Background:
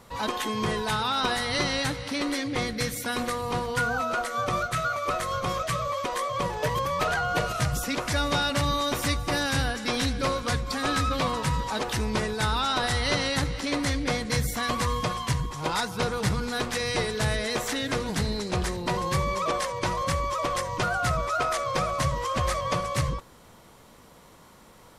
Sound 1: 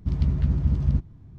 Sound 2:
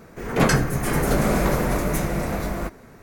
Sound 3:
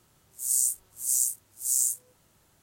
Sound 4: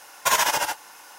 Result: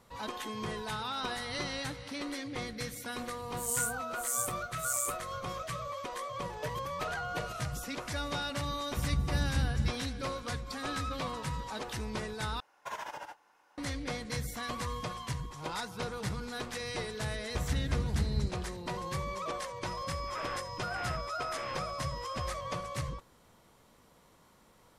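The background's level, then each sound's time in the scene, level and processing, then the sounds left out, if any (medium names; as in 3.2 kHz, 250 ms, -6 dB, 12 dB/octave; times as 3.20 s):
background -10 dB
3.18 s: add 3 -8.5 dB
8.91 s: add 1 -9 dB
12.60 s: replace with 4 -15.5 dB + low-pass 1.2 kHz 6 dB/octave
17.49 s: add 1 -10 dB
19.87 s: add 3 -14 dB + class-D stage that switches slowly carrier 5.1 kHz
not used: 2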